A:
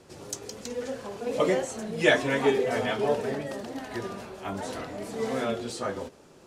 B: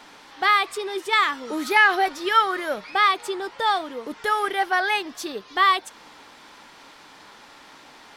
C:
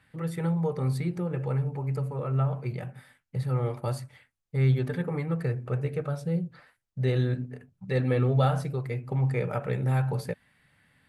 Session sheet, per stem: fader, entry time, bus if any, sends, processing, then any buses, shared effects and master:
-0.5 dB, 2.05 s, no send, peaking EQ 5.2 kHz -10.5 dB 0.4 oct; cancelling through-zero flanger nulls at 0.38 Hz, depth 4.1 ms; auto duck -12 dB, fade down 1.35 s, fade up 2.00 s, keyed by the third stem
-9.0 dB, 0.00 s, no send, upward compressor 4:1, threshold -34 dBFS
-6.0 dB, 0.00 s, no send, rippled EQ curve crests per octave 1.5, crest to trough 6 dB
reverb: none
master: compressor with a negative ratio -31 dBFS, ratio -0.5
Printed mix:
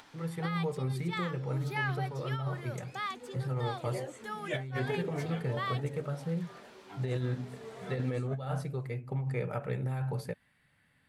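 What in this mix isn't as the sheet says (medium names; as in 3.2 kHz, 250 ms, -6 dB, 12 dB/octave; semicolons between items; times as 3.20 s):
stem A: entry 2.05 s -> 2.45 s; stem B -9.0 dB -> -19.0 dB; stem C: missing rippled EQ curve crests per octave 1.5, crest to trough 6 dB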